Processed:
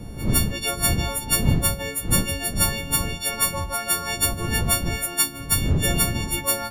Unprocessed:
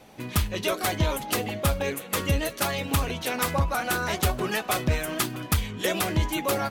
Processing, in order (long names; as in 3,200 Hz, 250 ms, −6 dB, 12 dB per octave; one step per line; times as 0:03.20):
every partial snapped to a pitch grid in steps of 4 semitones
wind on the microphone 150 Hz −22 dBFS
level −4.5 dB